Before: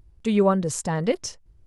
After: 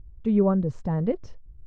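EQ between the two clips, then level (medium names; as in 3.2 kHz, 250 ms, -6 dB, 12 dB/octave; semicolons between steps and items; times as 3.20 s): tilt EQ -3 dB/octave; dynamic bell 2.9 kHz, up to -5 dB, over -39 dBFS, Q 0.76; distance through air 200 m; -6.0 dB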